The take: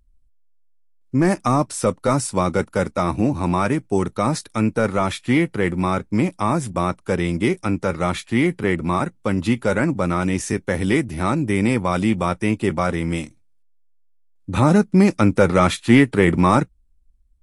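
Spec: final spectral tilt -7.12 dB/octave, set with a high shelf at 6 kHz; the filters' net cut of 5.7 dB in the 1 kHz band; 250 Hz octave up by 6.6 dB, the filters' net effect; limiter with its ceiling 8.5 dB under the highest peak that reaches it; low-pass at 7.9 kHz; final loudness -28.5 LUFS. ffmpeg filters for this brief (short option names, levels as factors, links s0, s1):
-af "lowpass=7900,equalizer=f=250:t=o:g=9,equalizer=f=1000:t=o:g=-8,highshelf=f=6000:g=-3,volume=0.282,alimiter=limit=0.15:level=0:latency=1"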